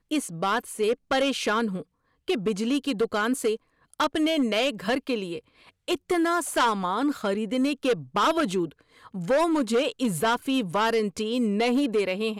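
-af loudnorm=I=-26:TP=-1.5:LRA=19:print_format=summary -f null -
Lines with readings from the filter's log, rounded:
Input Integrated:    -25.5 LUFS
Input True Peak:     -17.4 dBTP
Input LRA:             2.0 LU
Input Threshold:     -35.9 LUFS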